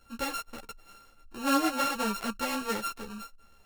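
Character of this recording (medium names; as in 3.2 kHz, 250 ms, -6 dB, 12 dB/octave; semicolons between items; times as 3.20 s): a buzz of ramps at a fixed pitch in blocks of 32 samples; a shimmering, thickened sound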